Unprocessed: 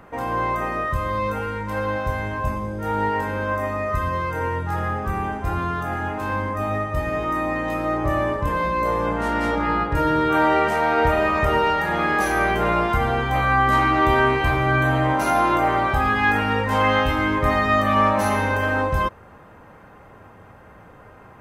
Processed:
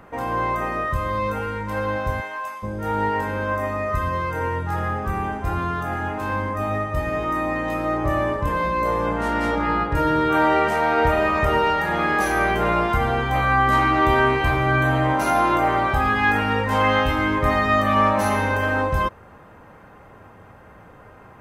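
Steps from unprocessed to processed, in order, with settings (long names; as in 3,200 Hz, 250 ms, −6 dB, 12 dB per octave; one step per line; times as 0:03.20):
0:02.20–0:02.62: high-pass filter 530 Hz → 1,300 Hz 12 dB per octave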